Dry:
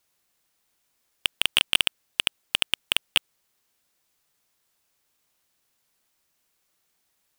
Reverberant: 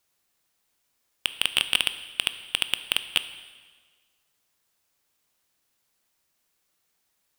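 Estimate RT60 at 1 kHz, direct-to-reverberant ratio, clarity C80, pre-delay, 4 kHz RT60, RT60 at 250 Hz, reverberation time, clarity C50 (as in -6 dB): 1.5 s, 11.0 dB, 14.0 dB, 6 ms, 1.4 s, 1.5 s, 1.5 s, 12.5 dB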